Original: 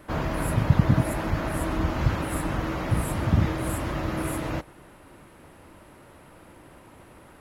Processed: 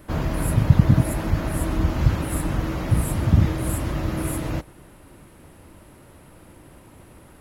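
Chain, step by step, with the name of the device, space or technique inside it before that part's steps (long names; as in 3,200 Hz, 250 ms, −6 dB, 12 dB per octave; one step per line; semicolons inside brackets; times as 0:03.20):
smiley-face EQ (low-shelf EQ 160 Hz +4 dB; parametric band 1,200 Hz −4.5 dB 2.9 octaves; high-shelf EQ 7,900 Hz +4 dB)
level +2.5 dB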